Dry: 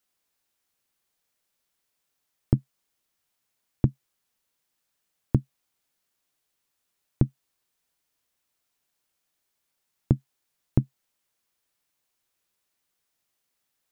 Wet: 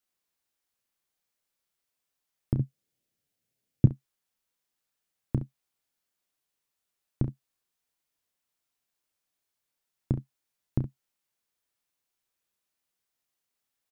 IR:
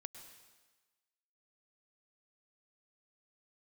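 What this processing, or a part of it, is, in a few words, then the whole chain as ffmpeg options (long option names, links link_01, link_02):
slapback doubling: -filter_complex "[0:a]asplit=3[link_01][link_02][link_03];[link_02]adelay=31,volume=-8dB[link_04];[link_03]adelay=67,volume=-12dB[link_05];[link_01][link_04][link_05]amix=inputs=3:normalize=0,asettb=1/sr,asplit=3[link_06][link_07][link_08];[link_06]atrim=end=2.584[link_09];[link_07]atrim=start=2.58:end=3.86,asetpts=PTS-STARTPTS,afade=type=in:duration=0.004:curve=qsin,afade=type=out:start_time=1.276:duration=0.004:curve=qsin,equalizer=frequency=125:width_type=o:width=1:gain=11,equalizer=frequency=250:width_type=o:width=1:gain=5,equalizer=frequency=500:width_type=o:width=1:gain=6,equalizer=frequency=1000:width_type=o:width=1:gain=-8[link_10];[link_08]atrim=start=3.856[link_11];[link_09][link_10]acrossfade=duration=0.004:curve1=hsin:curve2=qsin[link_12];[link_12][link_11]acrossfade=duration=0.004:curve1=qsin:curve2=hsin,volume=-6.5dB"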